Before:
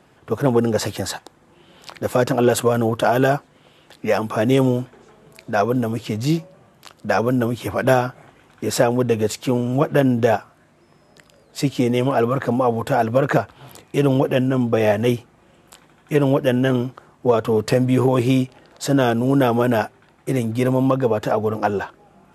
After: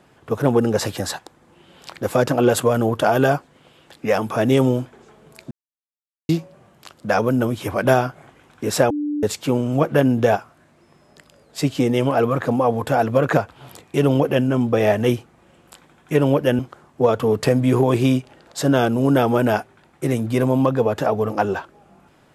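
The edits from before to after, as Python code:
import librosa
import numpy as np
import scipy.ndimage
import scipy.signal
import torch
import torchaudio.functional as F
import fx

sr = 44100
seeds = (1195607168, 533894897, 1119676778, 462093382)

y = fx.edit(x, sr, fx.silence(start_s=5.51, length_s=0.78),
    fx.bleep(start_s=8.9, length_s=0.33, hz=295.0, db=-20.5),
    fx.cut(start_s=16.59, length_s=0.25), tone=tone)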